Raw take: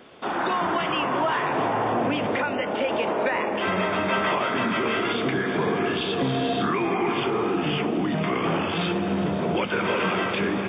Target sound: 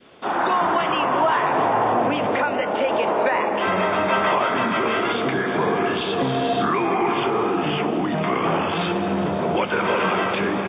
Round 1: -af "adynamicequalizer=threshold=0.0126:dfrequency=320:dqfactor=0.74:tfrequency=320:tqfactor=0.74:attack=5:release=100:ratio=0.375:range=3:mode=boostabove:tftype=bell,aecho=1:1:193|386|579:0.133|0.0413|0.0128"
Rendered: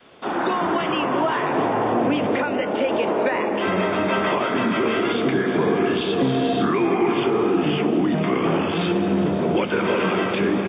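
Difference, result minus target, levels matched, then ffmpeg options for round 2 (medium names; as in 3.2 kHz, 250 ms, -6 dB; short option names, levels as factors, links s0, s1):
250 Hz band +4.0 dB
-af "adynamicequalizer=threshold=0.0126:dfrequency=850:dqfactor=0.74:tfrequency=850:tqfactor=0.74:attack=5:release=100:ratio=0.375:range=3:mode=boostabove:tftype=bell,aecho=1:1:193|386|579:0.133|0.0413|0.0128"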